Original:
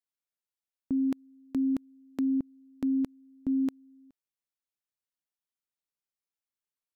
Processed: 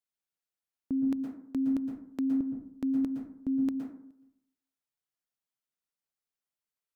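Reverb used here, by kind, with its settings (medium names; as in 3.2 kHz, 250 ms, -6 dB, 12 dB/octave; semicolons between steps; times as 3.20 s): plate-style reverb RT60 0.67 s, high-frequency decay 0.4×, pre-delay 105 ms, DRR 2.5 dB; trim -2 dB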